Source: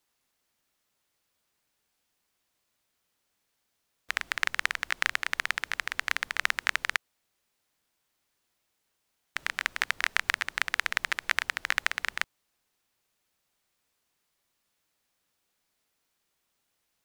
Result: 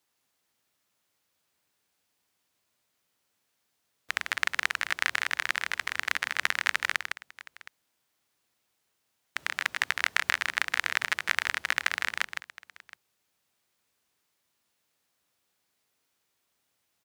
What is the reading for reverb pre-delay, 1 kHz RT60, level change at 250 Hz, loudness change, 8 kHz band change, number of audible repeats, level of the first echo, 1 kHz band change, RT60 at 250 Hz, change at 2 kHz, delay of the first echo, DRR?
no reverb audible, no reverb audible, +1.0 dB, +1.0 dB, +1.0 dB, 2, −6.0 dB, +1.0 dB, no reverb audible, +1.0 dB, 158 ms, no reverb audible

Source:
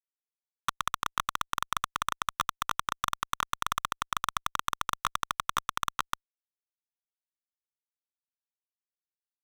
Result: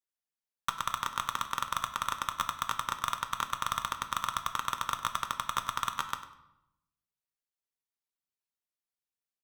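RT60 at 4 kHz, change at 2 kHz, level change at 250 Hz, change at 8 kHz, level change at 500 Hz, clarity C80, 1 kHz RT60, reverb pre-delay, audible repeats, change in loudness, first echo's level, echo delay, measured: 0.65 s, −1.5 dB, −0.5 dB, −1.0 dB, −1.0 dB, 12.0 dB, 0.80 s, 5 ms, 1, −1.0 dB, −15.5 dB, 99 ms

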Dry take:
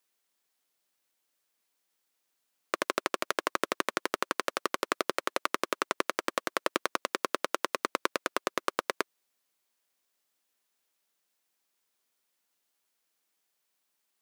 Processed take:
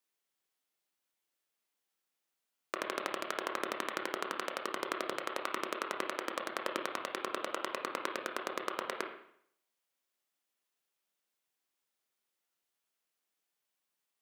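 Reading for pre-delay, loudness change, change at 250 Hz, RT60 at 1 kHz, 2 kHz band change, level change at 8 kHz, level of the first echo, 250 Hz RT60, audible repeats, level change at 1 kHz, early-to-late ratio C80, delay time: 20 ms, −5.5 dB, −5.0 dB, 0.65 s, −5.5 dB, −7.5 dB, no echo audible, 0.65 s, no echo audible, −5.5 dB, 9.5 dB, no echo audible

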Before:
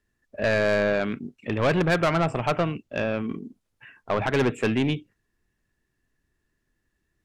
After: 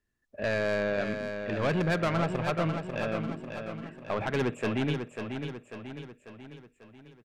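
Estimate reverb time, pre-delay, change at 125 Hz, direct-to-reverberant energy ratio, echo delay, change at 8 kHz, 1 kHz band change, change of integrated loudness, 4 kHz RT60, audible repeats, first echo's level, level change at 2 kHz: no reverb audible, no reverb audible, −3.5 dB, no reverb audible, 544 ms, −5.5 dB, −5.5 dB, −6.0 dB, no reverb audible, 5, −7.0 dB, −5.5 dB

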